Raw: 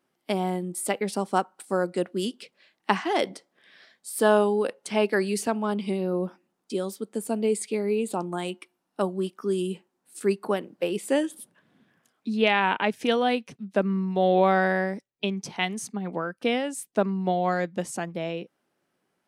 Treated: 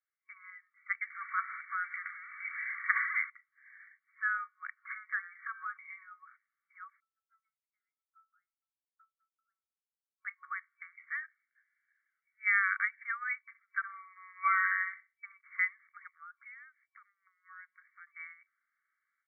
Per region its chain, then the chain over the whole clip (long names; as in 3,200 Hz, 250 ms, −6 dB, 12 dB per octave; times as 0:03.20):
0:01.10–0:03.30: converter with a step at zero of −29.5 dBFS + parametric band 2,700 Hz +14 dB 0.22 octaves
0:04.77–0:05.77: hum removal 174.2 Hz, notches 32 + downward compressor 10 to 1, threshold −33 dBFS + flat-topped bell 840 Hz +13.5 dB 2.4 octaves
0:07.00–0:10.25: resonances in every octave E, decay 0.27 s + expander for the loud parts 2.5 to 1, over −52 dBFS
0:11.26–0:12.47: parametric band 1,100 Hz −13 dB 0.58 octaves + micro pitch shift up and down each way 24 cents
0:13.48–0:15.37: comb filter 4.4 ms, depth 72% + flutter between parallel walls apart 11.1 metres, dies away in 0.28 s
0:16.07–0:18.07: downward compressor 8 to 1, threshold −37 dBFS + frequency shifter −150 Hz
whole clip: brick-wall band-pass 1,100–2,300 Hz; first difference; automatic gain control gain up to 14.5 dB; level −2 dB